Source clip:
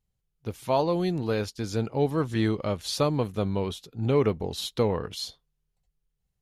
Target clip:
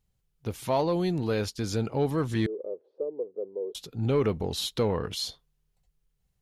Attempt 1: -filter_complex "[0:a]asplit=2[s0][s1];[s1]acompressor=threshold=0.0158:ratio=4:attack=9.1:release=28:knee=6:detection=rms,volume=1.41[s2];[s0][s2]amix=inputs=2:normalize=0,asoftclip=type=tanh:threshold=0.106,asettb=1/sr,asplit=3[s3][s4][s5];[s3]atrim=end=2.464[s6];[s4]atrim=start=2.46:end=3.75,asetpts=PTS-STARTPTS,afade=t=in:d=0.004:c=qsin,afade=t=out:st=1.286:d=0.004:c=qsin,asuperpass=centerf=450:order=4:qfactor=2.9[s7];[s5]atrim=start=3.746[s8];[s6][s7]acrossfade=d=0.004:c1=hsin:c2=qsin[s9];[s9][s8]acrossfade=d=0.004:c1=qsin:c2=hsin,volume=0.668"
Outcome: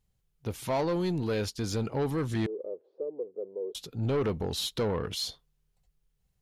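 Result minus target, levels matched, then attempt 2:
saturation: distortion +12 dB
-filter_complex "[0:a]asplit=2[s0][s1];[s1]acompressor=threshold=0.0158:ratio=4:attack=9.1:release=28:knee=6:detection=rms,volume=1.41[s2];[s0][s2]amix=inputs=2:normalize=0,asoftclip=type=tanh:threshold=0.299,asettb=1/sr,asplit=3[s3][s4][s5];[s3]atrim=end=2.464[s6];[s4]atrim=start=2.46:end=3.75,asetpts=PTS-STARTPTS,afade=t=in:d=0.004:c=qsin,afade=t=out:st=1.286:d=0.004:c=qsin,asuperpass=centerf=450:order=4:qfactor=2.9[s7];[s5]atrim=start=3.746[s8];[s6][s7]acrossfade=d=0.004:c1=hsin:c2=qsin[s9];[s9][s8]acrossfade=d=0.004:c1=qsin:c2=hsin,volume=0.668"

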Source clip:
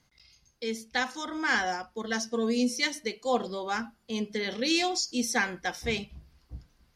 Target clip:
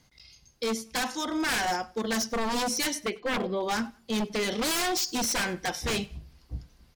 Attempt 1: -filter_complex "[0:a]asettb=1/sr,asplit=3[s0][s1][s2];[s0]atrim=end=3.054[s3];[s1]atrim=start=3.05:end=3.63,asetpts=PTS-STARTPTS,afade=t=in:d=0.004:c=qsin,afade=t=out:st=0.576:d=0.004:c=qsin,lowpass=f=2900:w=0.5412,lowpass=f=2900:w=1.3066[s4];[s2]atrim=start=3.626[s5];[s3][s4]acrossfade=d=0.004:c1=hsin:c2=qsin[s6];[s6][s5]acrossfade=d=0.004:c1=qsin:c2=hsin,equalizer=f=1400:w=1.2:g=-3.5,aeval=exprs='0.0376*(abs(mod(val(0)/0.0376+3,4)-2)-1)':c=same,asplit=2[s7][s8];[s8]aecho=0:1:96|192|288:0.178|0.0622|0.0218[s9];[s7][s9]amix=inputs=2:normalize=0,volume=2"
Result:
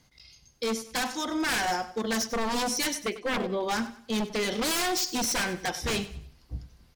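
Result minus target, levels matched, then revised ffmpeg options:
echo-to-direct +9.5 dB
-filter_complex "[0:a]asettb=1/sr,asplit=3[s0][s1][s2];[s0]atrim=end=3.054[s3];[s1]atrim=start=3.05:end=3.63,asetpts=PTS-STARTPTS,afade=t=in:d=0.004:c=qsin,afade=t=out:st=0.576:d=0.004:c=qsin,lowpass=f=2900:w=0.5412,lowpass=f=2900:w=1.3066[s4];[s2]atrim=start=3.626[s5];[s3][s4]acrossfade=d=0.004:c1=hsin:c2=qsin[s6];[s6][s5]acrossfade=d=0.004:c1=qsin:c2=hsin,equalizer=f=1400:w=1.2:g=-3.5,aeval=exprs='0.0376*(abs(mod(val(0)/0.0376+3,4)-2)-1)':c=same,asplit=2[s7][s8];[s8]aecho=0:1:96|192:0.0596|0.0208[s9];[s7][s9]amix=inputs=2:normalize=0,volume=2"

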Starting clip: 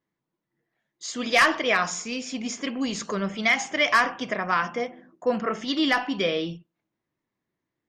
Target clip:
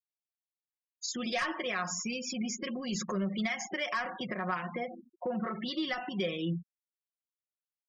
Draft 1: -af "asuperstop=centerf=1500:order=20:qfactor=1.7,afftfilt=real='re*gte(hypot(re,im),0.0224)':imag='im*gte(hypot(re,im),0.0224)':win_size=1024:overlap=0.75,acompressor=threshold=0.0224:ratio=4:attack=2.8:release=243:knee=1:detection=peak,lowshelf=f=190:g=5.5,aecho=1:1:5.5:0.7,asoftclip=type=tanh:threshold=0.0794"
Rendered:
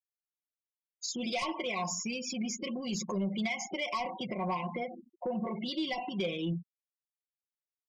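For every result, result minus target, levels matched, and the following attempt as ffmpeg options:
saturation: distortion +11 dB; 2 kHz band -3.0 dB
-af "asuperstop=centerf=1500:order=20:qfactor=1.7,afftfilt=real='re*gte(hypot(re,im),0.0224)':imag='im*gte(hypot(re,im),0.0224)':win_size=1024:overlap=0.75,acompressor=threshold=0.0224:ratio=4:attack=2.8:release=243:knee=1:detection=peak,lowshelf=f=190:g=5.5,aecho=1:1:5.5:0.7,asoftclip=type=tanh:threshold=0.168"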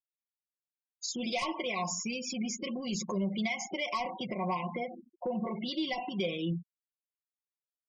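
2 kHz band -3.0 dB
-af "afftfilt=real='re*gte(hypot(re,im),0.0224)':imag='im*gte(hypot(re,im),0.0224)':win_size=1024:overlap=0.75,acompressor=threshold=0.0224:ratio=4:attack=2.8:release=243:knee=1:detection=peak,lowshelf=f=190:g=5.5,aecho=1:1:5.5:0.7,asoftclip=type=tanh:threshold=0.168"

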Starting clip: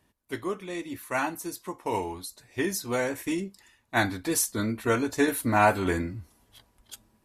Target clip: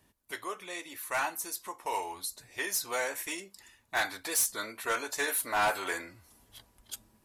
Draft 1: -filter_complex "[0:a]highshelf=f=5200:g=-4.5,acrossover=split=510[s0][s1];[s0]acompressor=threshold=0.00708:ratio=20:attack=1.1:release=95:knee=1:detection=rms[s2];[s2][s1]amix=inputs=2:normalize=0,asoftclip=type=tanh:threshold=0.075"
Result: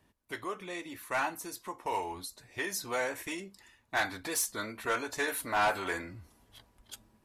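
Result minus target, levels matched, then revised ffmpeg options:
compression: peak gain reduction -10.5 dB; 8 kHz band -3.0 dB
-filter_complex "[0:a]highshelf=f=5200:g=5,acrossover=split=510[s0][s1];[s0]acompressor=threshold=0.002:ratio=20:attack=1.1:release=95:knee=1:detection=rms[s2];[s2][s1]amix=inputs=2:normalize=0,asoftclip=type=tanh:threshold=0.075"

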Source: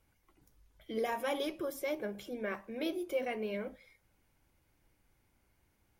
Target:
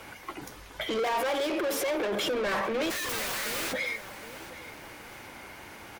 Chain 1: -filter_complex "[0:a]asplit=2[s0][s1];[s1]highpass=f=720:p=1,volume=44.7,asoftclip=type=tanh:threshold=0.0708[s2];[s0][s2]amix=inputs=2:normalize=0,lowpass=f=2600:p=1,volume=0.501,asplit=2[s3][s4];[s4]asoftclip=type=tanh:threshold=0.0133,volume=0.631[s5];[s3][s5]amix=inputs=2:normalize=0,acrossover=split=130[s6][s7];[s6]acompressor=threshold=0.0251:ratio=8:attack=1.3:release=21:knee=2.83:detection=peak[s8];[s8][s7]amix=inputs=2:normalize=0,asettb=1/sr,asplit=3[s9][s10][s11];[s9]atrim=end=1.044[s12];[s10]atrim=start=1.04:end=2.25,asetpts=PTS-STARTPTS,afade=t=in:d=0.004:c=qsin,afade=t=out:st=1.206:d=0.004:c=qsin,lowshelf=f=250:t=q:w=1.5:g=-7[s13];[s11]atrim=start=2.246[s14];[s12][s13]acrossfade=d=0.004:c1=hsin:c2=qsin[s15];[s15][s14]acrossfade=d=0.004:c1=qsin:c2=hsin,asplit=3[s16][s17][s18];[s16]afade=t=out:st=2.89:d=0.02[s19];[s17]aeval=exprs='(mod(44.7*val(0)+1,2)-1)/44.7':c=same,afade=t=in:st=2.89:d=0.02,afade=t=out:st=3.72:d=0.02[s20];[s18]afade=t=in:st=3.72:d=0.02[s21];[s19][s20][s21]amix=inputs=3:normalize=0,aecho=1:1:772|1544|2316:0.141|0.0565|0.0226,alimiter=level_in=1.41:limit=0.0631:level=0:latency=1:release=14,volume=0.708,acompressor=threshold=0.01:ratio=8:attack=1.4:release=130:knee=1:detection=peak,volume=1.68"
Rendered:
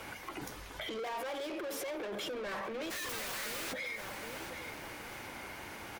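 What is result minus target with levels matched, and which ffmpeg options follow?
compression: peak gain reduction +11 dB
-filter_complex "[0:a]asplit=2[s0][s1];[s1]highpass=f=720:p=1,volume=44.7,asoftclip=type=tanh:threshold=0.0708[s2];[s0][s2]amix=inputs=2:normalize=0,lowpass=f=2600:p=1,volume=0.501,asplit=2[s3][s4];[s4]asoftclip=type=tanh:threshold=0.0133,volume=0.631[s5];[s3][s5]amix=inputs=2:normalize=0,acrossover=split=130[s6][s7];[s6]acompressor=threshold=0.0251:ratio=8:attack=1.3:release=21:knee=2.83:detection=peak[s8];[s8][s7]amix=inputs=2:normalize=0,asettb=1/sr,asplit=3[s9][s10][s11];[s9]atrim=end=1.044[s12];[s10]atrim=start=1.04:end=2.25,asetpts=PTS-STARTPTS,afade=t=in:d=0.004:c=qsin,afade=t=out:st=1.206:d=0.004:c=qsin,lowshelf=f=250:t=q:w=1.5:g=-7[s13];[s11]atrim=start=2.246[s14];[s12][s13]acrossfade=d=0.004:c1=hsin:c2=qsin[s15];[s15][s14]acrossfade=d=0.004:c1=qsin:c2=hsin,asplit=3[s16][s17][s18];[s16]afade=t=out:st=2.89:d=0.02[s19];[s17]aeval=exprs='(mod(44.7*val(0)+1,2)-1)/44.7':c=same,afade=t=in:st=2.89:d=0.02,afade=t=out:st=3.72:d=0.02[s20];[s18]afade=t=in:st=3.72:d=0.02[s21];[s19][s20][s21]amix=inputs=3:normalize=0,aecho=1:1:772|1544|2316:0.141|0.0565|0.0226,alimiter=level_in=1.41:limit=0.0631:level=0:latency=1:release=14,volume=0.708,volume=1.68"

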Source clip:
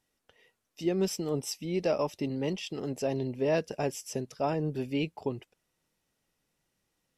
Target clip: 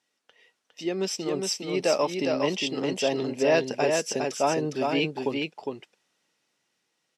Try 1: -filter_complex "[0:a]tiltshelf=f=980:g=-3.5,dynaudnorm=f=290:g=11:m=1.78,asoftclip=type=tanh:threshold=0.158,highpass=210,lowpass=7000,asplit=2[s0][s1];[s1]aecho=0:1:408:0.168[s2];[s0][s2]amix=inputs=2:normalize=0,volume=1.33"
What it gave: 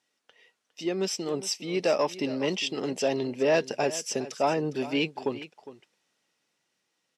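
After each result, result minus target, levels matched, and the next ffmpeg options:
saturation: distortion +13 dB; echo-to-direct -11.5 dB
-filter_complex "[0:a]tiltshelf=f=980:g=-3.5,dynaudnorm=f=290:g=11:m=1.78,asoftclip=type=tanh:threshold=0.376,highpass=210,lowpass=7000,asplit=2[s0][s1];[s1]aecho=0:1:408:0.168[s2];[s0][s2]amix=inputs=2:normalize=0,volume=1.33"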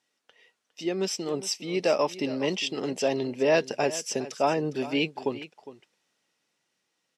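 echo-to-direct -11.5 dB
-filter_complex "[0:a]tiltshelf=f=980:g=-3.5,dynaudnorm=f=290:g=11:m=1.78,asoftclip=type=tanh:threshold=0.376,highpass=210,lowpass=7000,asplit=2[s0][s1];[s1]aecho=0:1:408:0.631[s2];[s0][s2]amix=inputs=2:normalize=0,volume=1.33"

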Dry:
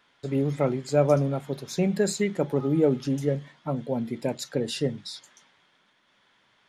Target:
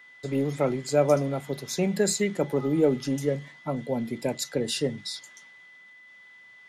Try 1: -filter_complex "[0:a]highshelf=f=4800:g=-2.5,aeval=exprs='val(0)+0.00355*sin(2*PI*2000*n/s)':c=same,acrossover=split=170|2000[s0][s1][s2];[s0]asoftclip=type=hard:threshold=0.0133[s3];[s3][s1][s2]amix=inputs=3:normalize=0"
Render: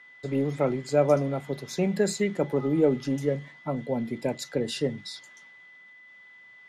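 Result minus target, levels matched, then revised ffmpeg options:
8 kHz band -6.5 dB
-filter_complex "[0:a]highshelf=f=4800:g=7,aeval=exprs='val(0)+0.00355*sin(2*PI*2000*n/s)':c=same,acrossover=split=170|2000[s0][s1][s2];[s0]asoftclip=type=hard:threshold=0.0133[s3];[s3][s1][s2]amix=inputs=3:normalize=0"

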